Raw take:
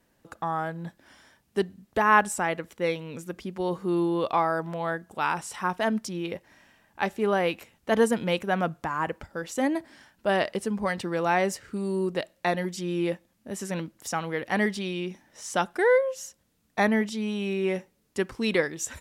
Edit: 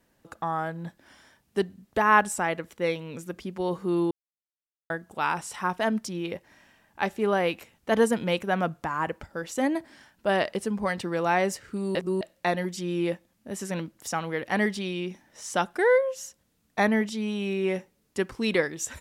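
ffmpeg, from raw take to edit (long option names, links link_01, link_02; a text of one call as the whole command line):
ffmpeg -i in.wav -filter_complex "[0:a]asplit=5[link_01][link_02][link_03][link_04][link_05];[link_01]atrim=end=4.11,asetpts=PTS-STARTPTS,afade=type=out:start_time=4.106:duration=0.004:curve=hsin[link_06];[link_02]atrim=start=4.11:end=4.9,asetpts=PTS-STARTPTS,volume=0[link_07];[link_03]atrim=start=4.9:end=11.952,asetpts=PTS-STARTPTS,afade=type=in:duration=0.004:curve=hsin[link_08];[link_04]atrim=start=11.948:end=12.212,asetpts=PTS-STARTPTS,areverse[link_09];[link_05]atrim=start=12.208[link_10];[link_06][link_07][link_08]concat=n=3:v=0:a=1[link_11];[link_11][link_09]acrossfade=duration=0.004:curve1=hsin:curve2=hsin[link_12];[link_12][link_10]acrossfade=duration=0.004:curve1=hsin:curve2=hsin" out.wav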